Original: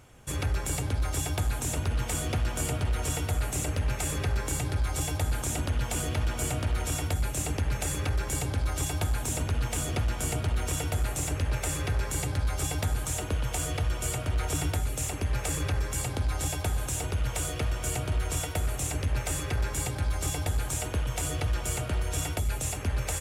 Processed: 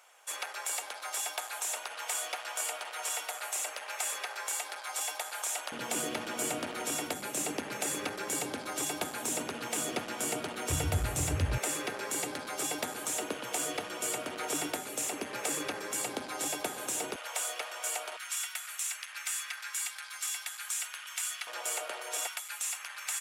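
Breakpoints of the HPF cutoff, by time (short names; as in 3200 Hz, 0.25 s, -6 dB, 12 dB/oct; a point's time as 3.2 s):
HPF 24 dB/oct
660 Hz
from 5.72 s 220 Hz
from 10.7 s 63 Hz
from 11.58 s 240 Hz
from 17.16 s 600 Hz
from 18.17 s 1300 Hz
from 21.47 s 530 Hz
from 22.27 s 1100 Hz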